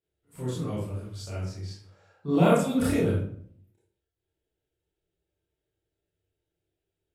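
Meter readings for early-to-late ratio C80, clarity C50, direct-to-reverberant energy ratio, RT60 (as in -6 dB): 6.0 dB, 1.0 dB, -8.0 dB, 0.60 s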